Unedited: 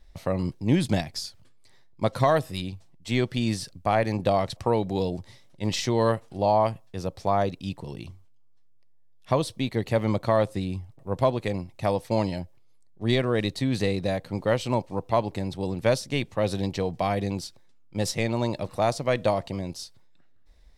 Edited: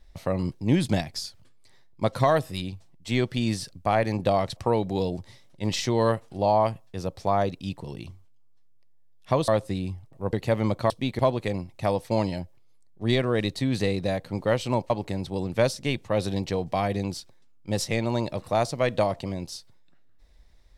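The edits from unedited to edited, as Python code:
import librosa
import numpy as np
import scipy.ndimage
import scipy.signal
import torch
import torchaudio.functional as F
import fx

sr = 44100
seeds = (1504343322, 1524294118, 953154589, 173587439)

y = fx.edit(x, sr, fx.swap(start_s=9.48, length_s=0.29, other_s=10.34, other_length_s=0.85),
    fx.cut(start_s=14.9, length_s=0.27), tone=tone)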